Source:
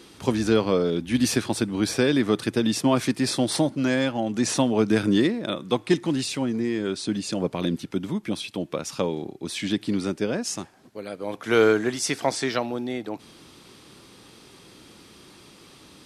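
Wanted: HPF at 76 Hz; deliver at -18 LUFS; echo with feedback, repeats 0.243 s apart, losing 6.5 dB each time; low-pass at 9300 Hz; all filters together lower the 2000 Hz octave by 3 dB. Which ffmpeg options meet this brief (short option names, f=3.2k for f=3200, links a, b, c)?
-af "highpass=76,lowpass=9.3k,equalizer=f=2k:t=o:g=-4,aecho=1:1:243|486|729|972|1215|1458:0.473|0.222|0.105|0.0491|0.0231|0.0109,volume=6dB"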